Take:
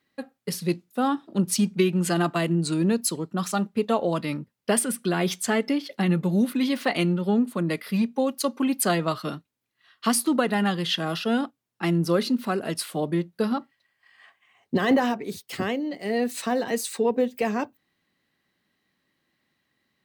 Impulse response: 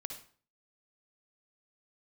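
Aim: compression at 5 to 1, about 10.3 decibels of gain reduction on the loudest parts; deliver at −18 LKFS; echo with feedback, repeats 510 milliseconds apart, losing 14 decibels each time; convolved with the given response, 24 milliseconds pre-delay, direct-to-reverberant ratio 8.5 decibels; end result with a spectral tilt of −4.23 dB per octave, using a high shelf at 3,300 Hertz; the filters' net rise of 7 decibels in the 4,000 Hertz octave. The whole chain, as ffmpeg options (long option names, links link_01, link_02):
-filter_complex "[0:a]highshelf=frequency=3300:gain=7,equalizer=frequency=4000:width_type=o:gain=4,acompressor=threshold=-27dB:ratio=5,aecho=1:1:510|1020:0.2|0.0399,asplit=2[link_01][link_02];[1:a]atrim=start_sample=2205,adelay=24[link_03];[link_02][link_03]afir=irnorm=-1:irlink=0,volume=-6.5dB[link_04];[link_01][link_04]amix=inputs=2:normalize=0,volume=12dB"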